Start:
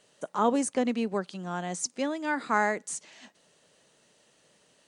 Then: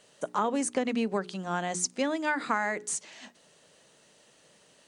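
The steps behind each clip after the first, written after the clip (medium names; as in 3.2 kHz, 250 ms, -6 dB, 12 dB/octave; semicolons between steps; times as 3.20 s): hum notches 60/120/180/240/300/360/420 Hz; dynamic bell 2.1 kHz, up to +4 dB, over -39 dBFS, Q 0.99; compression 10:1, threshold -27 dBFS, peak gain reduction 10 dB; trim +3.5 dB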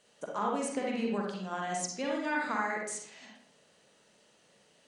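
reverberation RT60 0.60 s, pre-delay 40 ms, DRR -2 dB; trim -7.5 dB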